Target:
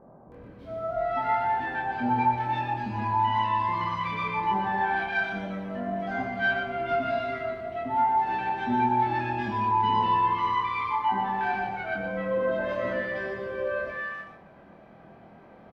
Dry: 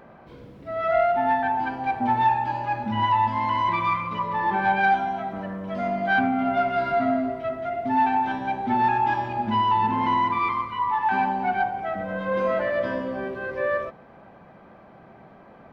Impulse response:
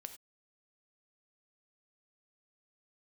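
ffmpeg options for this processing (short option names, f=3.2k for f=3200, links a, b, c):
-filter_complex "[0:a]asplit=2[a][b];[b]adelay=25,volume=-2dB[c];[a][c]amix=inputs=2:normalize=0,acrossover=split=1100[d][e];[e]adelay=320[f];[d][f]amix=inputs=2:normalize=0,asplit=2[g][h];[1:a]atrim=start_sample=2205,adelay=121[i];[h][i]afir=irnorm=-1:irlink=0,volume=-1.5dB[j];[g][j]amix=inputs=2:normalize=0,aresample=32000,aresample=44100,volume=-4.5dB"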